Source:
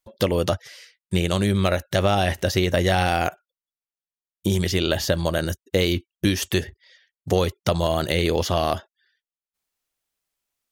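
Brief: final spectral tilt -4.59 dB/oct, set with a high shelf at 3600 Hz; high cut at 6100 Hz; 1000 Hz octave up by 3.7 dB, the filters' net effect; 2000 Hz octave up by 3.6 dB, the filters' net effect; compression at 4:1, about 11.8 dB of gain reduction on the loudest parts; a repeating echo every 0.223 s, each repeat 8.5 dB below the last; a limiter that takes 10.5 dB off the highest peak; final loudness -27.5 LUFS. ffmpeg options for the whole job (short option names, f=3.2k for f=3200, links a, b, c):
-af "lowpass=6.1k,equalizer=f=1k:t=o:g=5,equalizer=f=2k:t=o:g=4.5,highshelf=f=3.6k:g=-5,acompressor=threshold=-29dB:ratio=4,alimiter=limit=-21.5dB:level=0:latency=1,aecho=1:1:223|446|669|892:0.376|0.143|0.0543|0.0206,volume=7.5dB"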